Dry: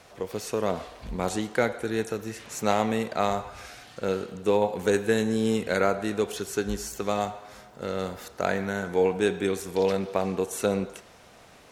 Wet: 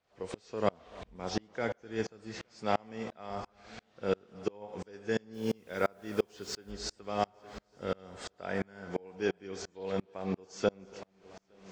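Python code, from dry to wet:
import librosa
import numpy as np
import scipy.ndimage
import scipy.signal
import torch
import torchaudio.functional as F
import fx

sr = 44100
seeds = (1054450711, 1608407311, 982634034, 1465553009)

p1 = fx.freq_compress(x, sr, knee_hz=2600.0, ratio=1.5)
p2 = fx.rider(p1, sr, range_db=4, speed_s=0.5)
p3 = fx.quant_dither(p2, sr, seeds[0], bits=8, dither='none', at=(5.33, 6.7), fade=0.02)
p4 = p3 + fx.echo_heads(p3, sr, ms=288, heads='first and third', feedback_pct=56, wet_db=-21.5, dry=0)
y = fx.tremolo_decay(p4, sr, direction='swelling', hz=2.9, depth_db=34)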